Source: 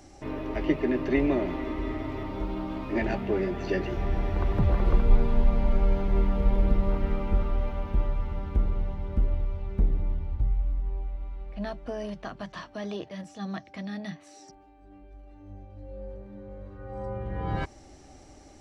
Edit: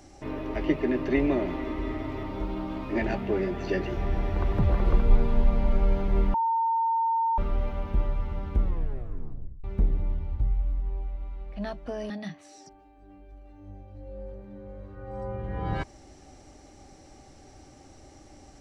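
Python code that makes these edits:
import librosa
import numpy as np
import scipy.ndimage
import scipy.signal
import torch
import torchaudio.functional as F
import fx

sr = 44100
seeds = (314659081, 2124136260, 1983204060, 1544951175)

y = fx.edit(x, sr, fx.bleep(start_s=6.34, length_s=1.04, hz=910.0, db=-22.0),
    fx.tape_stop(start_s=8.62, length_s=1.02),
    fx.cut(start_s=12.1, length_s=1.82), tone=tone)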